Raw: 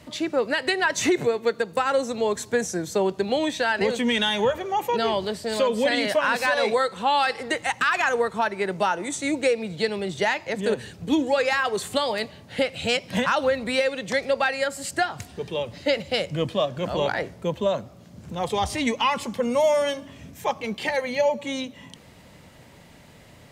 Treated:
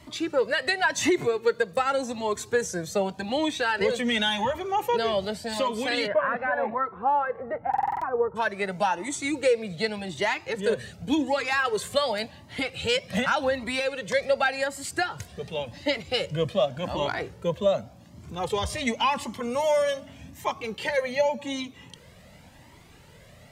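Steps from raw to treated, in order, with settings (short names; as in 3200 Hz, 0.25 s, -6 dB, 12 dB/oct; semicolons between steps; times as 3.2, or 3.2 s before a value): 6.06–8.35 LPF 1900 Hz -> 1000 Hz 24 dB/oct; stuck buffer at 7.69, samples 2048, times 6; cascading flanger rising 0.88 Hz; gain +2.5 dB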